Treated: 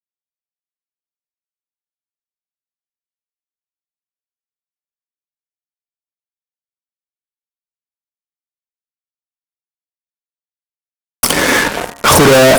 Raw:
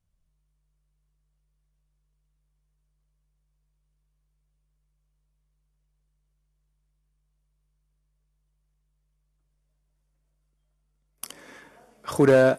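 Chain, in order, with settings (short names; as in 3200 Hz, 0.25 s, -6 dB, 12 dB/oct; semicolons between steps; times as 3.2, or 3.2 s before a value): fuzz box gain 49 dB, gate -53 dBFS; de-hum 69.9 Hz, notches 27; gain +7.5 dB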